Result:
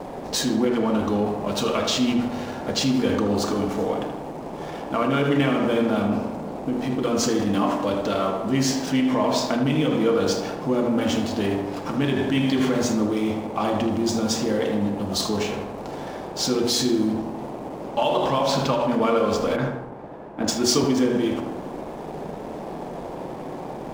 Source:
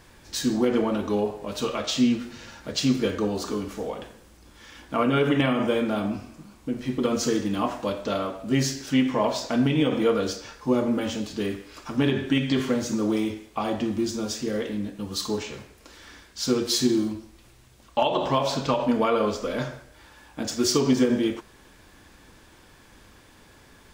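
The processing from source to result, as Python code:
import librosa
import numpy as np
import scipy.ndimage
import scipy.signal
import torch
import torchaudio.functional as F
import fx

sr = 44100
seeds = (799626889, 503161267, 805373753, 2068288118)

p1 = fx.hum_notches(x, sr, base_hz=60, count=8)
p2 = fx.dmg_noise_band(p1, sr, seeds[0], low_hz=140.0, high_hz=880.0, level_db=-40.0)
p3 = fx.over_compress(p2, sr, threshold_db=-29.0, ratio=-1.0)
p4 = p2 + (p3 * 10.0 ** (-1.0 / 20.0))
p5 = fx.backlash(p4, sr, play_db=-34.5)
p6 = p5 + fx.echo_filtered(p5, sr, ms=78, feedback_pct=65, hz=2600.0, wet_db=-7.0, dry=0)
p7 = fx.band_widen(p6, sr, depth_pct=70, at=(19.56, 20.84))
y = p7 * 10.0 ** (-1.5 / 20.0)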